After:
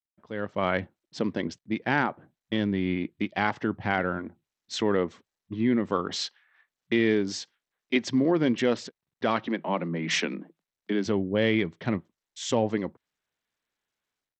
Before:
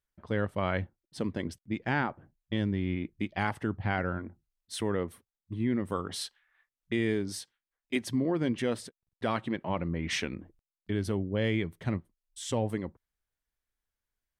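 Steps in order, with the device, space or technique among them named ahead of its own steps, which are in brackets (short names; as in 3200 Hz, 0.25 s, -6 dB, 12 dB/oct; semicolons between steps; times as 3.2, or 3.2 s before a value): 9.47–11.06 Chebyshev high-pass 160 Hz, order 8; Bluetooth headset (HPF 170 Hz 12 dB/oct; AGC gain up to 14 dB; downsampling 16000 Hz; gain -7 dB; SBC 64 kbps 32000 Hz)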